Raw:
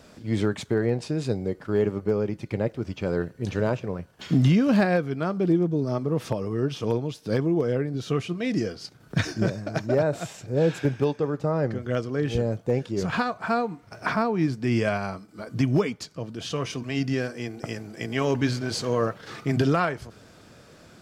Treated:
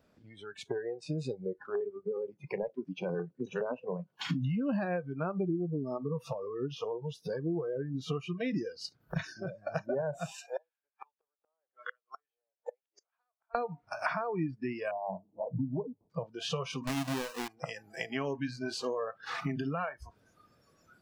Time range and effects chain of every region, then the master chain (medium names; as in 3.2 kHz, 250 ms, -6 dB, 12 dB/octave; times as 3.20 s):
1.65–4.25 s: high-pass 130 Hz 24 dB/octave + peaking EQ 240 Hz +5.5 dB 0.84 oct + LFO notch square 9.7 Hz 260–1800 Hz
10.32–13.55 s: high-pass 630 Hz 24 dB/octave + inverted gate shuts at -30 dBFS, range -38 dB + tape noise reduction on one side only decoder only
14.91–16.10 s: steep low-pass 1 kHz 72 dB/octave + hum notches 50/100/150/200 Hz
16.87–17.48 s: square wave that keeps the level + treble shelf 3.3 kHz +9 dB
whole clip: compression 16:1, threshold -35 dBFS; spectral noise reduction 24 dB; treble shelf 4.9 kHz -11.5 dB; trim +7 dB